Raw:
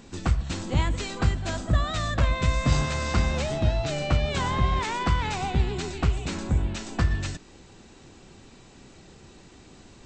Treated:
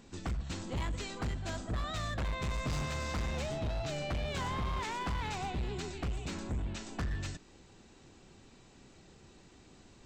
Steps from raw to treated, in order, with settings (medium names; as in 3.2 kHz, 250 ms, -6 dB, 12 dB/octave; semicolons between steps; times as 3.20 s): hard clipper -23 dBFS, distortion -8 dB; trim -8 dB